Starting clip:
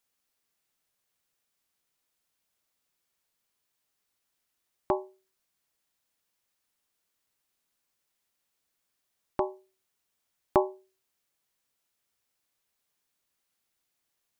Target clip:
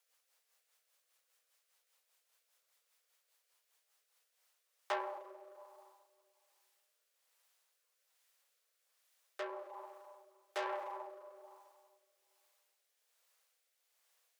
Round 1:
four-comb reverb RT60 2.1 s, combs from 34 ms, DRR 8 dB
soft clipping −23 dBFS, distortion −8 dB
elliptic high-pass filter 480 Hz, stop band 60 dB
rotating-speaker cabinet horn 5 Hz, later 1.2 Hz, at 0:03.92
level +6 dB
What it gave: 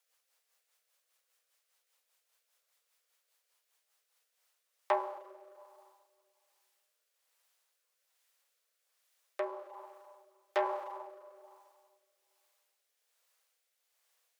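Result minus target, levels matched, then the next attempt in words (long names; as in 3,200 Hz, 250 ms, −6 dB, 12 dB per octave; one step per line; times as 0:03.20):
soft clipping: distortion −6 dB
four-comb reverb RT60 2.1 s, combs from 34 ms, DRR 8 dB
soft clipping −34 dBFS, distortion −2 dB
elliptic high-pass filter 480 Hz, stop band 60 dB
rotating-speaker cabinet horn 5 Hz, later 1.2 Hz, at 0:03.92
level +6 dB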